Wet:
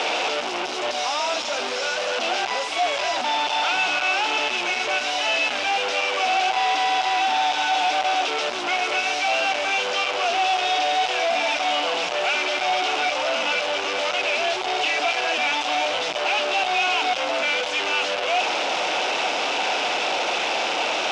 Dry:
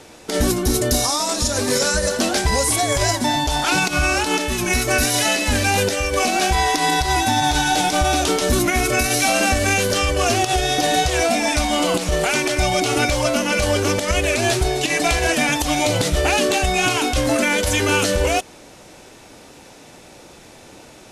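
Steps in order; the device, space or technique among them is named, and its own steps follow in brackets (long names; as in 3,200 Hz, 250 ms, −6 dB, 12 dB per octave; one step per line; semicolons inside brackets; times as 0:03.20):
home computer beeper (sign of each sample alone; loudspeaker in its box 680–4,700 Hz, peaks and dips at 730 Hz +5 dB, 1,100 Hz −3 dB, 1,800 Hz −7 dB, 2,700 Hz +4 dB, 4,300 Hz −6 dB)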